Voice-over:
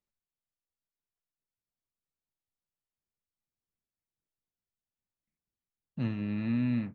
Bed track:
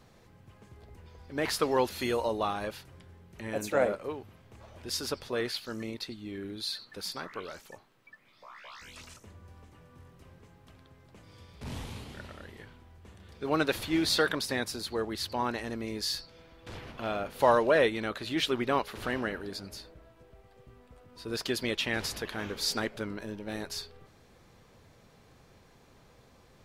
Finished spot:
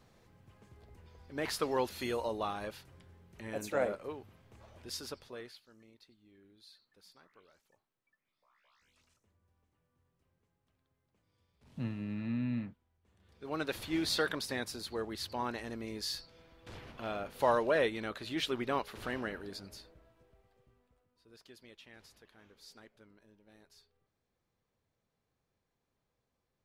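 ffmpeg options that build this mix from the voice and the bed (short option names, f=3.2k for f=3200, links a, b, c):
-filter_complex "[0:a]adelay=5800,volume=-5.5dB[a];[1:a]volume=12.5dB,afade=t=out:st=4.69:d=0.94:silence=0.125893,afade=t=in:st=13.02:d=0.92:silence=0.125893,afade=t=out:st=19.54:d=1.62:silence=0.105925[b];[a][b]amix=inputs=2:normalize=0"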